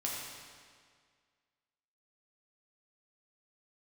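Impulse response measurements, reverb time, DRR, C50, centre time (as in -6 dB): 1.9 s, -4.0 dB, -0.5 dB, 101 ms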